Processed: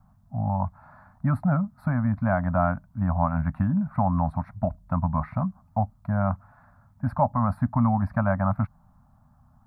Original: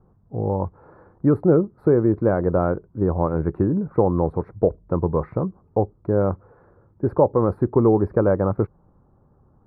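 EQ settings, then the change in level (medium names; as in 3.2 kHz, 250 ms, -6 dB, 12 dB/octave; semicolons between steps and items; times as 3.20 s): elliptic band-stop 250–640 Hz, stop band 40 dB; treble shelf 2 kHz +11 dB; 0.0 dB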